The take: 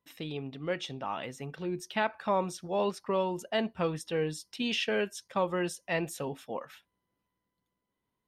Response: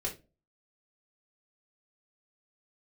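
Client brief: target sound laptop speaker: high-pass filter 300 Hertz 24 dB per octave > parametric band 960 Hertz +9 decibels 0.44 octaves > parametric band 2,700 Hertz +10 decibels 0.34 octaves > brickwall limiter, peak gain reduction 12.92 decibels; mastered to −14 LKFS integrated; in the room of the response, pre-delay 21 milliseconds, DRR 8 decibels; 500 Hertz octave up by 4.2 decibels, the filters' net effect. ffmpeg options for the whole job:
-filter_complex "[0:a]equalizer=frequency=500:width_type=o:gain=4.5,asplit=2[link_01][link_02];[1:a]atrim=start_sample=2205,adelay=21[link_03];[link_02][link_03]afir=irnorm=-1:irlink=0,volume=-11dB[link_04];[link_01][link_04]amix=inputs=2:normalize=0,highpass=frequency=300:width=0.5412,highpass=frequency=300:width=1.3066,equalizer=frequency=960:width_type=o:width=0.44:gain=9,equalizer=frequency=2700:width_type=o:width=0.34:gain=10,volume=19dB,alimiter=limit=-3.5dB:level=0:latency=1"

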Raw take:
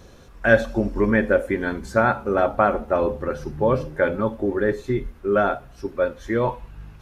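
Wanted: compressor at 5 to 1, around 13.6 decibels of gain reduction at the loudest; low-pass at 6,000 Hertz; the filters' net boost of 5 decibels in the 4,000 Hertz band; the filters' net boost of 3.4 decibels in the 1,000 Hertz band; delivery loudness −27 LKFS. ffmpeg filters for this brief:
ffmpeg -i in.wav -af "lowpass=6000,equalizer=frequency=1000:width_type=o:gain=4.5,equalizer=frequency=4000:width_type=o:gain=6.5,acompressor=threshold=-25dB:ratio=5,volume=3dB" out.wav

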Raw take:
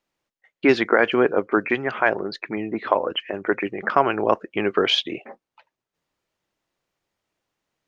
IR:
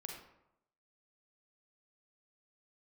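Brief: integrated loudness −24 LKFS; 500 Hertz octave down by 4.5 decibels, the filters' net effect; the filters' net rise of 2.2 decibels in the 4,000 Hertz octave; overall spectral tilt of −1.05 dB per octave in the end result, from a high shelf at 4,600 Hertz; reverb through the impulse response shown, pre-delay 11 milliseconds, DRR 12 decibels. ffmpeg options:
-filter_complex "[0:a]equalizer=frequency=500:width_type=o:gain=-6,equalizer=frequency=4000:width_type=o:gain=5,highshelf=frequency=4600:gain=-4,asplit=2[link_01][link_02];[1:a]atrim=start_sample=2205,adelay=11[link_03];[link_02][link_03]afir=irnorm=-1:irlink=0,volume=-9dB[link_04];[link_01][link_04]amix=inputs=2:normalize=0,volume=-1dB"

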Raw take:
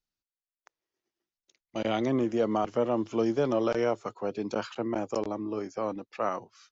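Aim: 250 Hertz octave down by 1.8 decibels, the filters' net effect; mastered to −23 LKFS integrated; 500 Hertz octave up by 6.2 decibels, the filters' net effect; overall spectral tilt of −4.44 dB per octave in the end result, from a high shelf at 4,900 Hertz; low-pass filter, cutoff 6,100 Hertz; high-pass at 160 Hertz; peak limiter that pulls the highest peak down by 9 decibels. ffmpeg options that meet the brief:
ffmpeg -i in.wav -af "highpass=160,lowpass=6100,equalizer=frequency=250:width_type=o:gain=-6.5,equalizer=frequency=500:width_type=o:gain=9,highshelf=frequency=4900:gain=6.5,volume=7dB,alimiter=limit=-12.5dB:level=0:latency=1" out.wav

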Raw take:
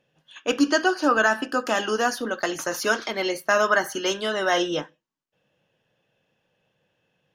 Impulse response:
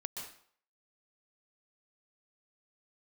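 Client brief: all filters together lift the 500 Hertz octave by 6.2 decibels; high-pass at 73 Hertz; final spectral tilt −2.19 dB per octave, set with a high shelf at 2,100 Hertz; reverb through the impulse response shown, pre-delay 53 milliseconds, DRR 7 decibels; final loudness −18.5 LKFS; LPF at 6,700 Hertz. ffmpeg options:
-filter_complex "[0:a]highpass=73,lowpass=6700,equalizer=frequency=500:width_type=o:gain=8.5,highshelf=frequency=2100:gain=-7,asplit=2[link_01][link_02];[1:a]atrim=start_sample=2205,adelay=53[link_03];[link_02][link_03]afir=irnorm=-1:irlink=0,volume=-6.5dB[link_04];[link_01][link_04]amix=inputs=2:normalize=0,volume=1.5dB"

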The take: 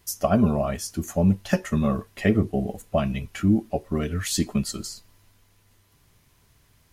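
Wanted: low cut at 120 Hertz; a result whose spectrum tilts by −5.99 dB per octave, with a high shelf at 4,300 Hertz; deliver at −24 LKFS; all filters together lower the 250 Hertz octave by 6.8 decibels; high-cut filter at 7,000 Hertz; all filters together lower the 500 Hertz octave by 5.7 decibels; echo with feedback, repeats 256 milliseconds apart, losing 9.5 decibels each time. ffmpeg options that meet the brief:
ffmpeg -i in.wav -af "highpass=120,lowpass=7000,equalizer=frequency=250:width_type=o:gain=-7.5,equalizer=frequency=500:width_type=o:gain=-5.5,highshelf=frequency=4300:gain=-9,aecho=1:1:256|512|768|1024:0.335|0.111|0.0365|0.012,volume=6.5dB" out.wav

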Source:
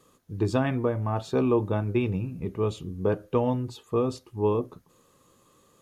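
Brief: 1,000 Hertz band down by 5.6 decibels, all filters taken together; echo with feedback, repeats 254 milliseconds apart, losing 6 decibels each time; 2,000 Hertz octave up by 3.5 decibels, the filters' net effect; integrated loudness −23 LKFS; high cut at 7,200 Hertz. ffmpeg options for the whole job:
ffmpeg -i in.wav -af "lowpass=7200,equalizer=frequency=1000:width_type=o:gain=-9,equalizer=frequency=2000:width_type=o:gain=8,aecho=1:1:254|508|762|1016|1270|1524:0.501|0.251|0.125|0.0626|0.0313|0.0157,volume=4.5dB" out.wav

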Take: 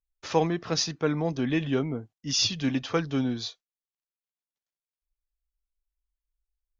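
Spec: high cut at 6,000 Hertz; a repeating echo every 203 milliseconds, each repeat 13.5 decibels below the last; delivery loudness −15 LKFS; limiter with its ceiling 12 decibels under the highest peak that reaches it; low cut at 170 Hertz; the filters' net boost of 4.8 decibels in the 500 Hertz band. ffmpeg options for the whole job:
ffmpeg -i in.wav -af "highpass=170,lowpass=6000,equalizer=frequency=500:width_type=o:gain=5.5,alimiter=limit=-19dB:level=0:latency=1,aecho=1:1:203|406:0.211|0.0444,volume=15dB" out.wav

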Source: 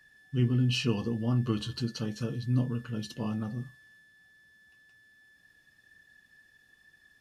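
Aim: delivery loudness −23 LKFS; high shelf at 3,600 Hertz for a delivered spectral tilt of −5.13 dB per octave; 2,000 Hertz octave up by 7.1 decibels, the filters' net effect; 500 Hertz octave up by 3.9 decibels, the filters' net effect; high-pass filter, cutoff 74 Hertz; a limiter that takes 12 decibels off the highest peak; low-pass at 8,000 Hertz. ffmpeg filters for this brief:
ffmpeg -i in.wav -af "highpass=74,lowpass=8000,equalizer=frequency=500:width_type=o:gain=4.5,equalizer=frequency=2000:width_type=o:gain=7,highshelf=frequency=3600:gain=7,volume=11dB,alimiter=limit=-13.5dB:level=0:latency=1" out.wav

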